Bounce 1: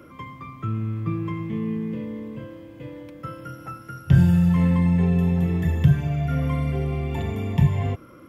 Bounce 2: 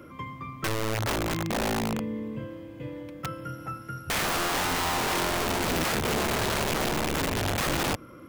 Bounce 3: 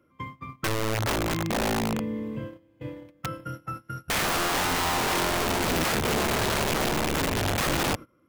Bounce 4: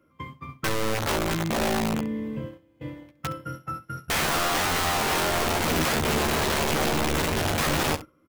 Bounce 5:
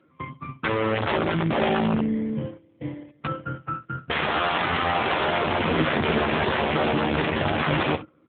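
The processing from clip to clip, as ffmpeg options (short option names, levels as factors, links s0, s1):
-af "aeval=exprs='(mod(13.3*val(0)+1,2)-1)/13.3':c=same"
-af "agate=range=0.1:threshold=0.0141:ratio=16:detection=peak,volume=1.19"
-af "aecho=1:1:13|66:0.531|0.178"
-af "volume=1.78" -ar 8000 -c:a libopencore_amrnb -b:a 7400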